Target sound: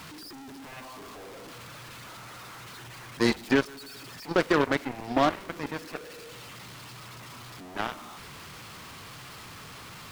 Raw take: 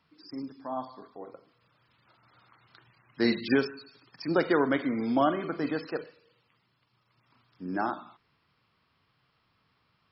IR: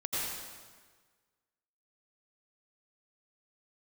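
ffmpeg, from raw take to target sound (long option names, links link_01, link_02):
-af "aeval=exprs='val(0)+0.5*0.0376*sgn(val(0))':channel_layout=same,aeval=exprs='0.266*(cos(1*acos(clip(val(0)/0.266,-1,1)))-cos(1*PI/2))+0.0188*(cos(3*acos(clip(val(0)/0.266,-1,1)))-cos(3*PI/2))+0.0422*(cos(7*acos(clip(val(0)/0.266,-1,1)))-cos(7*PI/2))':channel_layout=same,volume=1dB"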